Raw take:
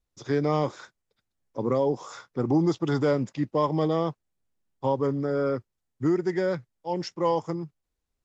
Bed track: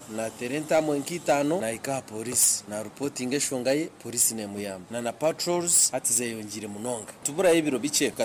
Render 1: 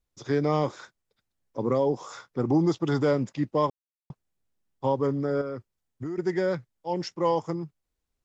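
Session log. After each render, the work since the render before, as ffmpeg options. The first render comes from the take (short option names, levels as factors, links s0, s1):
-filter_complex "[0:a]asettb=1/sr,asplit=3[s0][s1][s2];[s0]atrim=end=5.414[s3];[s1]atrim=start=5.41:end=6.18,asetpts=PTS-STARTPTS,afade=t=in:d=0.004:c=qsin,afade=t=out:st=0.766:d=0.004:c=qsin,acompressor=threshold=0.0316:ratio=6:attack=3.2:release=140:knee=1:detection=peak[s4];[s2]atrim=start=6.176[s5];[s3][s4]acrossfade=d=0.004:c1=hsin:c2=qsin[s6];[s6][s5]acrossfade=d=0.004:c1=qsin:c2=hsin,asplit=3[s7][s8][s9];[s7]atrim=end=3.7,asetpts=PTS-STARTPTS,afade=t=out:st=3.696:d=0.004:c=hsin[s10];[s8]atrim=start=3.7:end=4.1,asetpts=PTS-STARTPTS,volume=0[s11];[s9]atrim=start=4.1,asetpts=PTS-STARTPTS,afade=t=in:d=0.004:c=hsin[s12];[s10][s11][s12]concat=n=3:v=0:a=1"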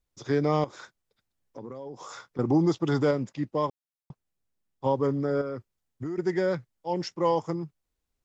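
-filter_complex "[0:a]asettb=1/sr,asplit=3[s0][s1][s2];[s0]atrim=end=0.644[s3];[s1]atrim=start=0.64:end=2.39,asetpts=PTS-STARTPTS,afade=t=in:d=0.004:c=qsin,afade=t=out:st=1.746:d=0.004:c=qsin,acompressor=threshold=0.0141:ratio=6:attack=3.2:release=140:knee=1:detection=peak[s4];[s2]atrim=start=2.386[s5];[s3][s4]acrossfade=d=0.004:c1=hsin:c2=qsin[s6];[s6][s5]acrossfade=d=0.004:c1=qsin:c2=hsin,asplit=3[s7][s8][s9];[s7]atrim=end=3.112[s10];[s8]atrim=start=3.108:end=4.862,asetpts=PTS-STARTPTS,volume=0.708[s11];[s9]atrim=start=4.858[s12];[s10][s11]acrossfade=d=0.004:c1=hsin:c2=hsin[s13];[s13][s12]acrossfade=d=0.004:c1=hsin:c2=hsin"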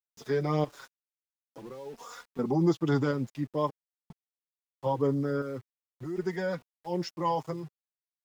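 -af "aeval=exprs='val(0)*gte(abs(val(0)),0.00422)':c=same,flanger=delay=4.1:depth=3.7:regen=2:speed=0.46:shape=sinusoidal"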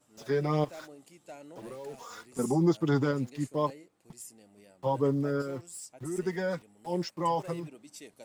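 -filter_complex "[1:a]volume=0.0631[s0];[0:a][s0]amix=inputs=2:normalize=0"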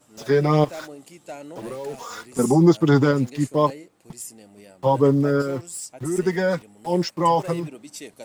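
-af "volume=3.16"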